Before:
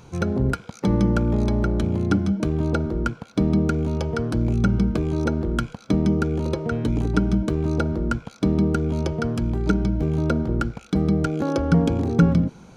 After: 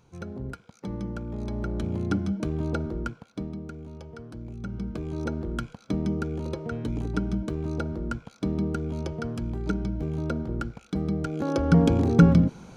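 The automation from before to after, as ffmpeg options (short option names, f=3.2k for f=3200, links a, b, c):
-af "volume=12dB,afade=t=in:st=1.29:d=0.68:silence=0.398107,afade=t=out:st=2.88:d=0.68:silence=0.266073,afade=t=in:st=4.59:d=0.68:silence=0.316228,afade=t=in:st=11.26:d=0.64:silence=0.398107"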